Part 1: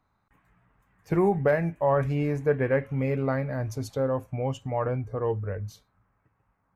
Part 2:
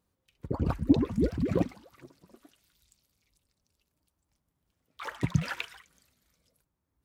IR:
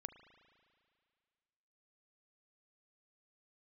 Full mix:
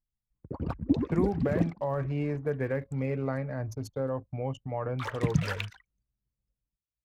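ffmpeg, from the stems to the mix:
-filter_complex "[0:a]volume=-4dB[link_01];[1:a]dynaudnorm=framelen=160:gausssize=7:maxgain=15.5dB,highpass=frequency=63:poles=1,volume=-9.5dB[link_02];[link_01][link_02]amix=inputs=2:normalize=0,anlmdn=0.0631,acrossover=split=300[link_03][link_04];[link_04]acompressor=threshold=-29dB:ratio=6[link_05];[link_03][link_05]amix=inputs=2:normalize=0"

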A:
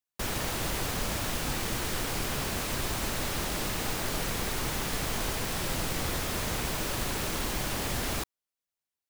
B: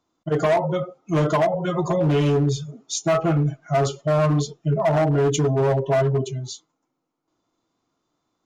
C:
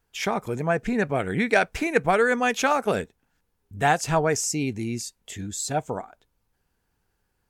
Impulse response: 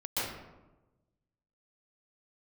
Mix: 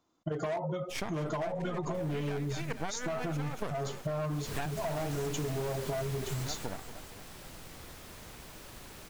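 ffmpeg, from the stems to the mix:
-filter_complex "[0:a]adelay=1750,volume=-7.5dB,afade=type=in:start_time=4.28:duration=0.29:silence=0.223872,afade=type=out:start_time=6.41:duration=0.42:silence=0.334965[link_01];[1:a]acompressor=threshold=-26dB:ratio=6,volume=-1.5dB,asplit=2[link_02][link_03];[2:a]aeval=exprs='max(val(0),0)':channel_layout=same,adelay=750,volume=-2.5dB,asplit=2[link_04][link_05];[link_05]volume=-17.5dB[link_06];[link_03]apad=whole_len=363426[link_07];[link_04][link_07]sidechaincompress=threshold=-41dB:ratio=5:attack=5.2:release=115[link_08];[link_06]aecho=0:1:232|464|696|928|1160|1392|1624|1856|2088|2320:1|0.6|0.36|0.216|0.13|0.0778|0.0467|0.028|0.0168|0.0101[link_09];[link_01][link_02][link_08][link_09]amix=inputs=4:normalize=0,acompressor=threshold=-31dB:ratio=6"

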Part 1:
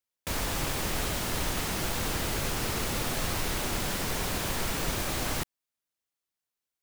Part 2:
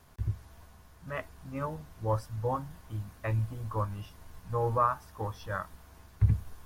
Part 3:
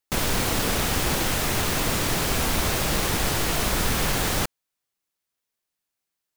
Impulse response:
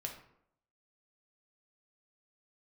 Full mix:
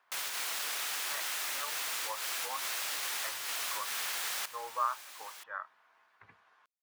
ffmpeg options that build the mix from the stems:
-filter_complex "[0:a]volume=-15dB[link_01];[1:a]lowpass=2100,lowshelf=frequency=72:gain=-12,volume=-0.5dB,asplit=2[link_02][link_03];[2:a]volume=-8.5dB[link_04];[link_03]apad=whole_len=280718[link_05];[link_04][link_05]sidechaincompress=threshold=-35dB:ratio=4:attack=37:release=143[link_06];[link_01][link_02][link_06]amix=inputs=3:normalize=0,highpass=1200"

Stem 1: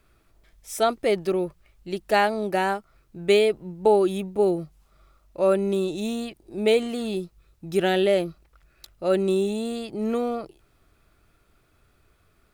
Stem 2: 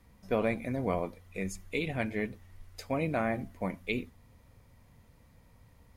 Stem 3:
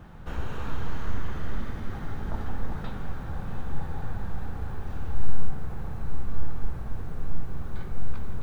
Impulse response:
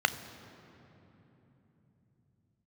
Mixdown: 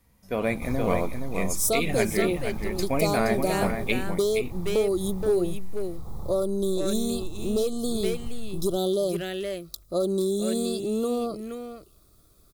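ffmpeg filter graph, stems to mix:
-filter_complex "[0:a]equalizer=frequency=860:width=3.6:gain=-11.5,asoftclip=type=hard:threshold=-15.5dB,adelay=900,volume=-6.5dB,asplit=2[link_01][link_02];[link_02]volume=-12.5dB[link_03];[1:a]volume=-4dB,asplit=2[link_04][link_05];[link_05]volume=-7dB[link_06];[2:a]acompressor=threshold=-27dB:ratio=6,adelay=350,volume=-9dB[link_07];[link_01][link_07]amix=inputs=2:normalize=0,asuperstop=centerf=2100:order=12:qfactor=0.97,acompressor=threshold=-31dB:ratio=6,volume=0dB[link_08];[link_03][link_06]amix=inputs=2:normalize=0,aecho=0:1:472:1[link_09];[link_04][link_08][link_09]amix=inputs=3:normalize=0,highshelf=frequency=6200:gain=11.5,dynaudnorm=framelen=260:gausssize=3:maxgain=9dB"

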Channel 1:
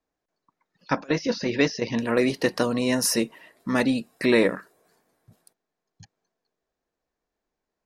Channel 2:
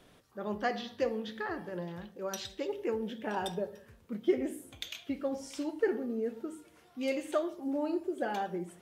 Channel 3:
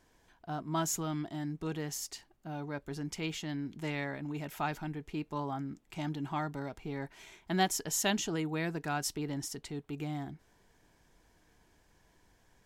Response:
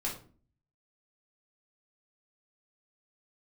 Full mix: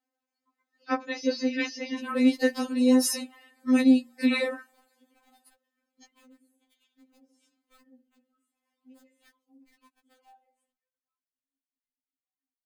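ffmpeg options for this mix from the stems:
-filter_complex "[0:a]highpass=170,equalizer=frequency=1100:width_type=o:width=0.25:gain=-3,bandreject=frequency=60:width_type=h:width=6,bandreject=frequency=120:width_type=h:width=6,bandreject=frequency=180:width_type=h:width=6,bandreject=frequency=240:width_type=h:width=6,volume=-1dB,asplit=2[link_01][link_02];[1:a]aeval=exprs='val(0)+0.000708*(sin(2*PI*50*n/s)+sin(2*PI*2*50*n/s)/2+sin(2*PI*3*50*n/s)/3+sin(2*PI*4*50*n/s)/4+sin(2*PI*5*50*n/s)/5)':channel_layout=same,adelay=1900,volume=-18dB[link_03];[2:a]acompressor=threshold=-51dB:ratio=2,lowpass=2700,adelay=2200,volume=-12dB[link_04];[link_02]apad=whole_len=655034[link_05];[link_04][link_05]sidechaingate=range=-33dB:threshold=-56dB:ratio=16:detection=peak[link_06];[link_03][link_06]amix=inputs=2:normalize=0,aeval=exprs='(mod(150*val(0)+1,2)-1)/150':channel_layout=same,alimiter=level_in=29dB:limit=-24dB:level=0:latency=1:release=306,volume=-29dB,volume=0dB[link_07];[link_01][link_07]amix=inputs=2:normalize=0,bandreject=frequency=5700:width=13,afftfilt=real='re*3.46*eq(mod(b,12),0)':imag='im*3.46*eq(mod(b,12),0)':win_size=2048:overlap=0.75"

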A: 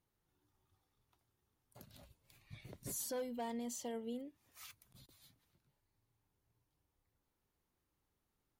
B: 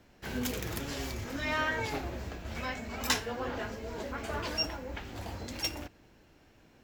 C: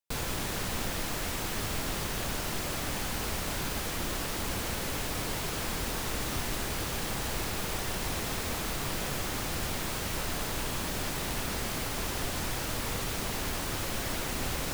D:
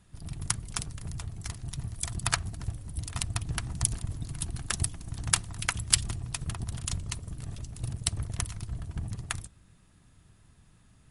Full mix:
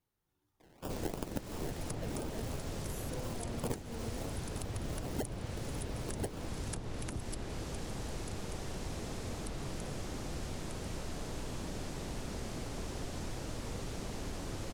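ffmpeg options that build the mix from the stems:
ffmpeg -i stem1.wav -i stem2.wav -i stem3.wav -i stem4.wav -filter_complex "[0:a]volume=-1dB[link_01];[1:a]aemphasis=mode=production:type=riaa,aphaser=in_gain=1:out_gain=1:delay=1.3:decay=0.39:speed=1.1:type=triangular,acrusher=samples=30:mix=1:aa=0.000001:lfo=1:lforange=18:lforate=2.9,adelay=600,volume=-5dB[link_02];[2:a]lowpass=5700,adelay=800,volume=-2.5dB[link_03];[3:a]adelay=1400,volume=-4dB,afade=type=out:start_time=7.1:duration=0.21:silence=0.298538[link_04];[link_01][link_02][link_03][link_04]amix=inputs=4:normalize=0,acrossover=split=690|6400[link_05][link_06][link_07];[link_05]acompressor=threshold=-36dB:ratio=4[link_08];[link_06]acompressor=threshold=-53dB:ratio=4[link_09];[link_07]acompressor=threshold=-48dB:ratio=4[link_10];[link_08][link_09][link_10]amix=inputs=3:normalize=0" out.wav

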